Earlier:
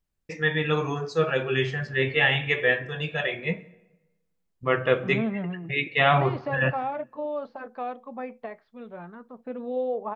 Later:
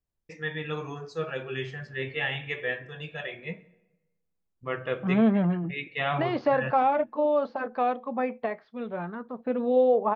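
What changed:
first voice -8.5 dB; second voice +7.0 dB

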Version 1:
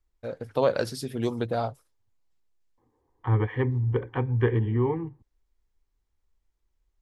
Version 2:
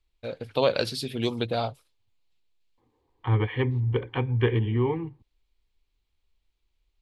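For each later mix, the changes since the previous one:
master: add high-order bell 3.2 kHz +10.5 dB 1.2 oct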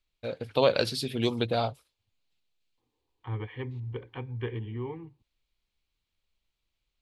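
second voice -11.0 dB

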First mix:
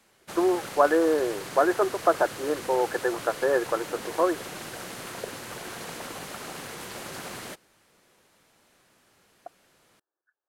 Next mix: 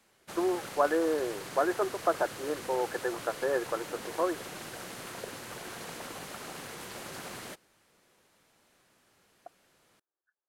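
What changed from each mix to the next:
speech -6.0 dB; background -4.0 dB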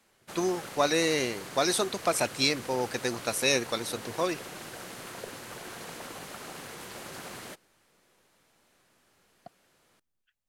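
speech: remove brick-wall FIR band-pass 290–1800 Hz

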